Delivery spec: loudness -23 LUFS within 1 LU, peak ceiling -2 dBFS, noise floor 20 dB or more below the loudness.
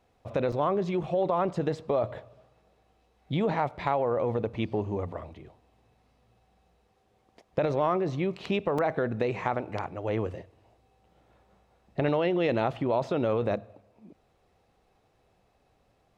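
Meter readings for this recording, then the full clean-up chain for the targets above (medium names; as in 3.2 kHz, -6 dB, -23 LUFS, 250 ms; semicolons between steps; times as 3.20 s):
dropouts 2; longest dropout 4.8 ms; loudness -29.0 LUFS; peak level -12.0 dBFS; loudness target -23.0 LUFS
-> interpolate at 0.52/8.78 s, 4.8 ms; trim +6 dB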